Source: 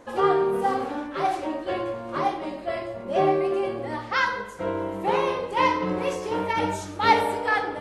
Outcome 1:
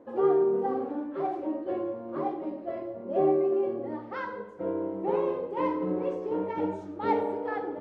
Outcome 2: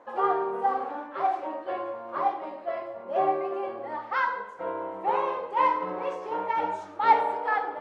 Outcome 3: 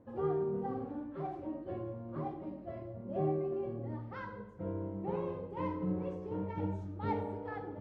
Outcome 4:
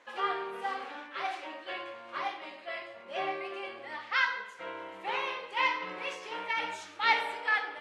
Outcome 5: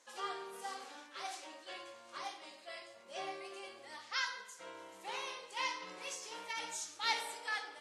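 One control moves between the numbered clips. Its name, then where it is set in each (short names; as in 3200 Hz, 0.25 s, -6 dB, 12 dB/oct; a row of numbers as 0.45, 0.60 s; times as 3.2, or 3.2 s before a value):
band-pass, frequency: 330, 900, 120, 2500, 6600 Hz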